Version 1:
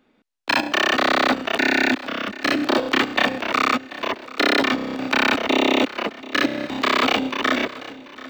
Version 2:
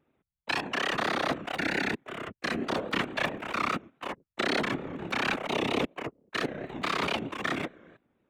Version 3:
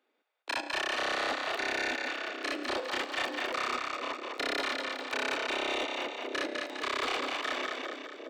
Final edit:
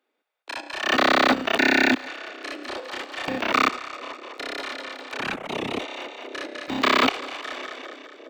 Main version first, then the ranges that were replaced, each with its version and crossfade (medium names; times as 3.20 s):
3
0.87–2.02 s: from 1, crossfade 0.16 s
3.28–3.69 s: from 1
5.19–5.80 s: from 2
6.68–7.09 s: from 1